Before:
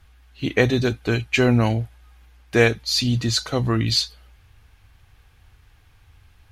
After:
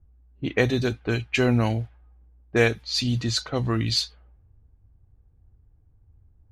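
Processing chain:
low-pass that shuts in the quiet parts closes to 340 Hz, open at −16.5 dBFS
level −3.5 dB

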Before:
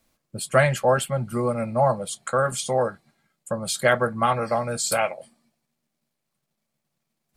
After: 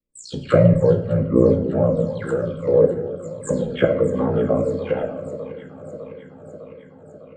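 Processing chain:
every frequency bin delayed by itself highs early, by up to 249 ms
elliptic low-pass filter 7,700 Hz, stop band 40 dB
noise gate −53 dBFS, range −19 dB
ring modulation 30 Hz
low shelf with overshoot 600 Hz +7.5 dB, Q 3
shaped tremolo saw up 1.3 Hz, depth 70%
in parallel at −7 dB: soft clipping −36 dBFS, distortion −1 dB
on the sum: treble cut that deepens with the level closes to 1,200 Hz, closed at −25 dBFS
on a send: delay that swaps between a low-pass and a high-pass 302 ms, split 1,200 Hz, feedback 82%, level −13.5 dB
on the sum: rectangular room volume 220 cubic metres, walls mixed, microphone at 0.52 metres
phaser whose notches keep moving one way falling 1.5 Hz
level +5.5 dB

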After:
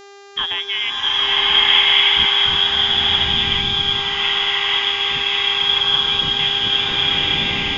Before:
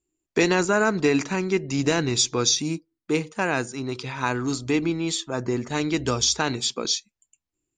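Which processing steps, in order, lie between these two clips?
voice inversion scrambler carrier 3,600 Hz
hum with harmonics 400 Hz, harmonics 18, −39 dBFS −5 dB per octave
slow-attack reverb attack 1,240 ms, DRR −10 dB
level −2.5 dB

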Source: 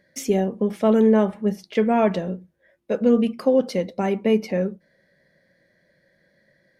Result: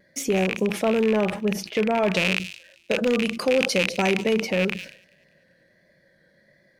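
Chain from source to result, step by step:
loose part that buzzes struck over −38 dBFS, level −15 dBFS
hard clipping −10.5 dBFS, distortion −26 dB
brickwall limiter −15.5 dBFS, peak gain reduction 5 dB
dynamic equaliser 240 Hz, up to −5 dB, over −36 dBFS, Q 3.5
pitch vibrato 1.4 Hz 36 cents
0:02.13–0:04.34: parametric band 7,500 Hz +8.5 dB 2.5 octaves
delay with a high-pass on its return 197 ms, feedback 44%, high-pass 3,600 Hz, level −17 dB
level that may fall only so fast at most 100 dB per second
level +2 dB

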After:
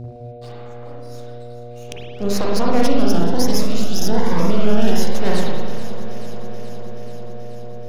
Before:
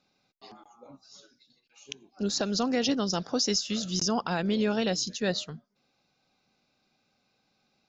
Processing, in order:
dynamic equaliser 2,300 Hz, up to −7 dB, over −48 dBFS, Q 0.97
half-wave rectification
hum with harmonics 120 Hz, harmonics 6, −40 dBFS −8 dB per octave
delay that swaps between a low-pass and a high-pass 215 ms, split 1,600 Hz, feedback 85%, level −13 dB
spring reverb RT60 1.4 s, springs 40/52 ms, chirp 65 ms, DRR −4 dB
0:02.87–0:05.15: phaser whose notches keep moving one way rising 1.2 Hz
level +7.5 dB

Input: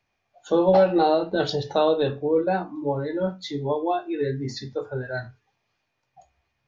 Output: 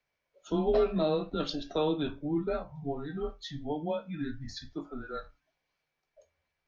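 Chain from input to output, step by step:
low-shelf EQ 400 Hz −6 dB
frequency shifter −150 Hz
level −6.5 dB

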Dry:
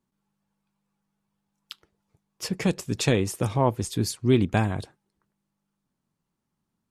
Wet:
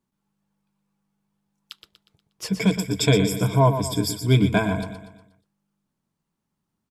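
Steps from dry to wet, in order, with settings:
0:02.48–0:04.83: EQ curve with evenly spaced ripples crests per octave 1.7, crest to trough 17 dB
repeating echo 120 ms, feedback 46%, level −9.5 dB

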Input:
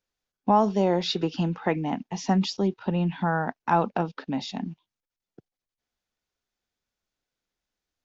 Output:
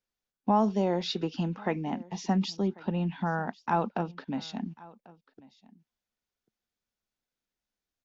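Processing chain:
parametric band 220 Hz +5 dB 0.23 octaves
single-tap delay 1,093 ms −22.5 dB
level −5 dB

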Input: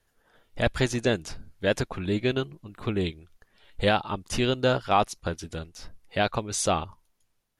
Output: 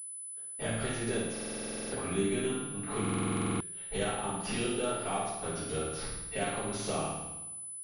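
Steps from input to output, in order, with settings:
high-pass filter 72 Hz 6 dB per octave
low-shelf EQ 98 Hz −11 dB
noise gate −58 dBFS, range −40 dB
downward compressor 10 to 1, threshold −38 dBFS, peak gain reduction 21.5 dB
transient designer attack −4 dB, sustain +2 dB
flutter between parallel walls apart 8.9 metres, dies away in 0.93 s
speed change −3%
rectangular room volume 43 cubic metres, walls mixed, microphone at 1.7 metres
buffer that repeats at 0:01.32/0:03.00, samples 2,048, times 12
switching amplifier with a slow clock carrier 10,000 Hz
level −2 dB

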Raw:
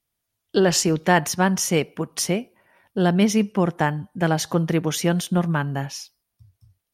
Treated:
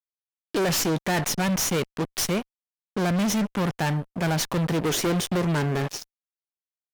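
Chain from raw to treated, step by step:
stylus tracing distortion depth 0.091 ms
0:04.82–0:05.98: parametric band 410 Hz +12.5 dB 0.85 octaves
fuzz pedal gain 28 dB, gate −34 dBFS
level −8 dB

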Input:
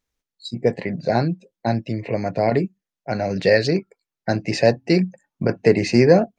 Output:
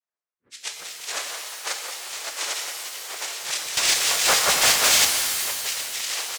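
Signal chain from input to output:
frequency axis turned over on the octave scale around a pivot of 1,200 Hz
high-pass filter 480 Hz 12 dB per octave
comb filter 4.4 ms, depth 44%
delay that swaps between a low-pass and a high-pass 182 ms, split 2,200 Hz, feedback 79%, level −9 dB
brickwall limiter −14.5 dBFS, peak gain reduction 10 dB
auto-filter high-pass saw down 6 Hz 860–1,900 Hz
cochlear-implant simulation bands 3
0:03.77–0:05.05: leveller curve on the samples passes 5
reverb with rising layers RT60 1.9 s, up +7 semitones, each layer −2 dB, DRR 4.5 dB
level −7.5 dB

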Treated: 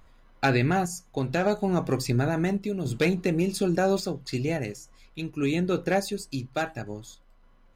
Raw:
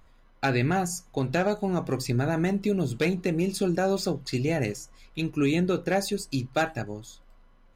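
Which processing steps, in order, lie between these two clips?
sample-and-hold tremolo 3.5 Hz
level +2.5 dB

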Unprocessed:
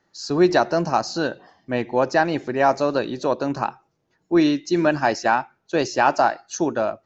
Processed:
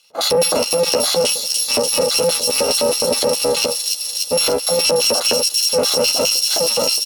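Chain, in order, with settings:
samples in bit-reversed order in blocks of 128 samples
auto-filter band-pass square 4.8 Hz 500–3,800 Hz
0:02.76–0:03.59: compressor whose output falls as the input rises −45 dBFS, ratio −1
flat-topped bell 510 Hz +10.5 dB 2.5 octaves
soft clipping −20 dBFS, distortion −18 dB
double-tracking delay 12 ms −6 dB
delay with a high-pass on its return 292 ms, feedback 79%, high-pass 5,000 Hz, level −5 dB
boost into a limiter +32.5 dB
level −7 dB

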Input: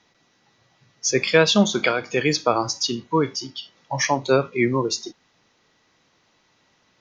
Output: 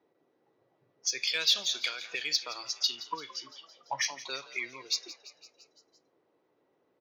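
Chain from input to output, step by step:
dynamic equaliser 820 Hz, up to −5 dB, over −31 dBFS, Q 0.89
envelope filter 400–4,300 Hz, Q 2, up, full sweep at −20 dBFS
parametric band 210 Hz −10 dB 0.22 octaves
in parallel at −8.5 dB: hard clipping −25.5 dBFS, distortion −8 dB
on the sum: echo with shifted repeats 170 ms, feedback 62%, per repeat +57 Hz, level −16 dB
level −2.5 dB

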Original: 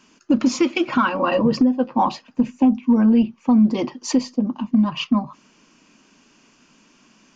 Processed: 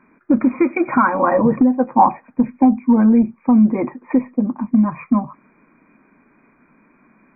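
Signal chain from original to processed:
0:00.76–0:03.01: dynamic equaliser 820 Hz, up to +6 dB, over −35 dBFS, Q 2.5
linear-phase brick-wall low-pass 2,500 Hz
level +2.5 dB

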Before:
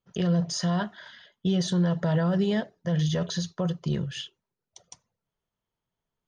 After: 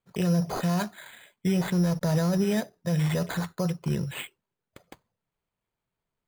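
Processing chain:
0:01.56–0:02.45: slack as between gear wheels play −35 dBFS
decimation without filtering 8×

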